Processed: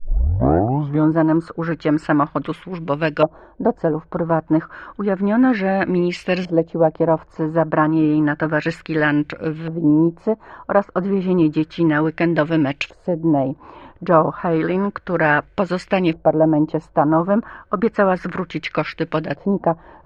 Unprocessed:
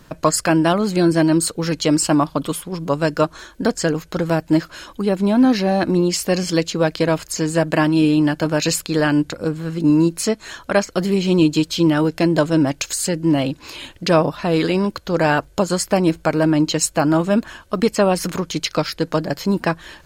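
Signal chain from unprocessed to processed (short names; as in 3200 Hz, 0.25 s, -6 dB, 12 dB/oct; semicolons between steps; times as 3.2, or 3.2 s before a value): tape start at the beginning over 1.15 s; LFO low-pass saw up 0.31 Hz 670–2800 Hz; gain -1.5 dB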